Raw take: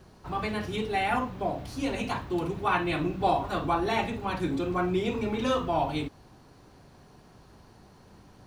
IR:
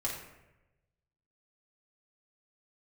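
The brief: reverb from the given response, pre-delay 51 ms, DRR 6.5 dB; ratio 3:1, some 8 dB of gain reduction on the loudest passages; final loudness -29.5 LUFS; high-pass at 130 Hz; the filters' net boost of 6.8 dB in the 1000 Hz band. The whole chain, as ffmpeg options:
-filter_complex "[0:a]highpass=130,equalizer=f=1k:t=o:g=9,acompressor=threshold=-26dB:ratio=3,asplit=2[a][b];[1:a]atrim=start_sample=2205,adelay=51[c];[b][c]afir=irnorm=-1:irlink=0,volume=-10dB[d];[a][d]amix=inputs=2:normalize=0,volume=-0.5dB"

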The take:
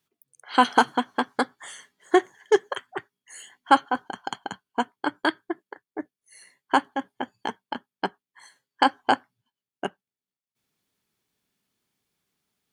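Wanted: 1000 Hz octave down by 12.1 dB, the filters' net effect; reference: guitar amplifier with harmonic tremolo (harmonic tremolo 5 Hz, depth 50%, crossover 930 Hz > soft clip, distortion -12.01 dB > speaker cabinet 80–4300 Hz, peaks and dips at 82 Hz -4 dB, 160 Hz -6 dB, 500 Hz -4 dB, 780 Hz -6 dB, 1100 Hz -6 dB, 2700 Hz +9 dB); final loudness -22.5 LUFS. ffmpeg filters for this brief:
-filter_complex "[0:a]equalizer=f=1k:t=o:g=-9,acrossover=split=930[a][b];[a]aeval=exprs='val(0)*(1-0.5/2+0.5/2*cos(2*PI*5*n/s))':c=same[c];[b]aeval=exprs='val(0)*(1-0.5/2-0.5/2*cos(2*PI*5*n/s))':c=same[d];[c][d]amix=inputs=2:normalize=0,asoftclip=threshold=-18.5dB,highpass=80,equalizer=f=82:t=q:w=4:g=-4,equalizer=f=160:t=q:w=4:g=-6,equalizer=f=500:t=q:w=4:g=-4,equalizer=f=780:t=q:w=4:g=-6,equalizer=f=1.1k:t=q:w=4:g=-6,equalizer=f=2.7k:t=q:w=4:g=9,lowpass=f=4.3k:w=0.5412,lowpass=f=4.3k:w=1.3066,volume=13dB"

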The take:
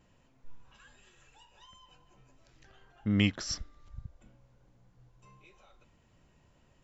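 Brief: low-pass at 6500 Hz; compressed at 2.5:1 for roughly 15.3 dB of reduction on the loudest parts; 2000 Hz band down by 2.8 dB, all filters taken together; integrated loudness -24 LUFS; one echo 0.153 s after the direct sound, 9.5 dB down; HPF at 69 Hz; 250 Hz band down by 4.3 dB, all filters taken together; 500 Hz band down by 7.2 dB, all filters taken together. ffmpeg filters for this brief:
-af "highpass=69,lowpass=6.5k,equalizer=f=250:t=o:g=-4,equalizer=f=500:t=o:g=-8,equalizer=f=2k:t=o:g=-3,acompressor=threshold=-48dB:ratio=2.5,aecho=1:1:153:0.335,volume=28.5dB"

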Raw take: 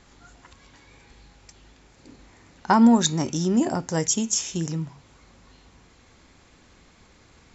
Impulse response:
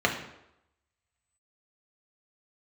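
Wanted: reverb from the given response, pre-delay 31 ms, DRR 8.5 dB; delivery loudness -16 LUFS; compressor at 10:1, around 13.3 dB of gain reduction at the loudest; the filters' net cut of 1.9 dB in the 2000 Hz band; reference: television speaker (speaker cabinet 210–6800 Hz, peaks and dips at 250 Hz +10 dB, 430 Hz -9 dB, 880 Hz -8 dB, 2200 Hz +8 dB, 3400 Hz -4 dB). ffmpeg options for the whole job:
-filter_complex "[0:a]equalizer=f=2k:t=o:g=-4.5,acompressor=threshold=-25dB:ratio=10,asplit=2[a][b];[1:a]atrim=start_sample=2205,adelay=31[c];[b][c]afir=irnorm=-1:irlink=0,volume=-22.5dB[d];[a][d]amix=inputs=2:normalize=0,highpass=f=210:w=0.5412,highpass=f=210:w=1.3066,equalizer=f=250:t=q:w=4:g=10,equalizer=f=430:t=q:w=4:g=-9,equalizer=f=880:t=q:w=4:g=-8,equalizer=f=2.2k:t=q:w=4:g=8,equalizer=f=3.4k:t=q:w=4:g=-4,lowpass=f=6.8k:w=0.5412,lowpass=f=6.8k:w=1.3066,volume=12.5dB"

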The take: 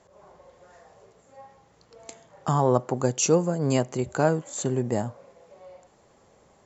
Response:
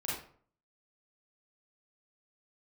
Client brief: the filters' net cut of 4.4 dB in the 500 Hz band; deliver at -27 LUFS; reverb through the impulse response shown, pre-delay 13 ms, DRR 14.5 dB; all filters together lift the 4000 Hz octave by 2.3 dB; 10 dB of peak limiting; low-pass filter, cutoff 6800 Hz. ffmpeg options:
-filter_complex "[0:a]lowpass=6.8k,equalizer=f=500:t=o:g=-5.5,equalizer=f=4k:t=o:g=4.5,alimiter=limit=-18dB:level=0:latency=1,asplit=2[a][b];[1:a]atrim=start_sample=2205,adelay=13[c];[b][c]afir=irnorm=-1:irlink=0,volume=-18dB[d];[a][d]amix=inputs=2:normalize=0,volume=3dB"

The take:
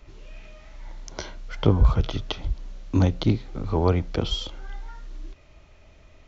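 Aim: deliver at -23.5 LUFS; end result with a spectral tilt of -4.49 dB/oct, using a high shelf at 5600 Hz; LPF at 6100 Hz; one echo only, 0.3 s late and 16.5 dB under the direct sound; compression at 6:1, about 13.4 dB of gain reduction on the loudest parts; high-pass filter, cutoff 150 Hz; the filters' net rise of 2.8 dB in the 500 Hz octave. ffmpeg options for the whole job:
-af "highpass=150,lowpass=6.1k,equalizer=f=500:t=o:g=3.5,highshelf=f=5.6k:g=-8.5,acompressor=threshold=-29dB:ratio=6,aecho=1:1:300:0.15,volume=13dB"

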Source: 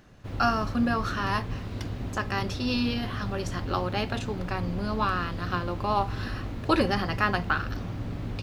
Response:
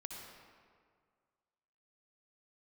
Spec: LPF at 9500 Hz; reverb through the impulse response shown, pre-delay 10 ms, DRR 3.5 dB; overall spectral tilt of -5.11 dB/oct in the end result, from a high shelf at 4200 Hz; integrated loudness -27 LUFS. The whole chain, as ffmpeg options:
-filter_complex "[0:a]lowpass=9.5k,highshelf=f=4.2k:g=-7.5,asplit=2[a][b];[1:a]atrim=start_sample=2205,adelay=10[c];[b][c]afir=irnorm=-1:irlink=0,volume=-1dB[d];[a][d]amix=inputs=2:normalize=0,volume=0.5dB"

